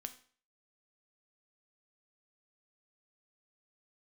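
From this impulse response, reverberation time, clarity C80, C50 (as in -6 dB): 0.45 s, 17.5 dB, 14.0 dB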